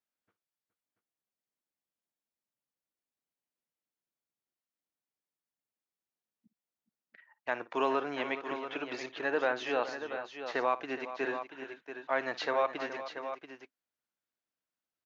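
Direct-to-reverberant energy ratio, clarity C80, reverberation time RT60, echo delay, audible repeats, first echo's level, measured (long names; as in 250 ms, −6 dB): no reverb audible, no reverb audible, no reverb audible, 56 ms, 3, −17.5 dB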